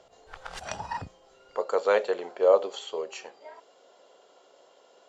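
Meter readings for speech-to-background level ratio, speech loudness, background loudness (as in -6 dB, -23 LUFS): 12.0 dB, -26.5 LUFS, -38.5 LUFS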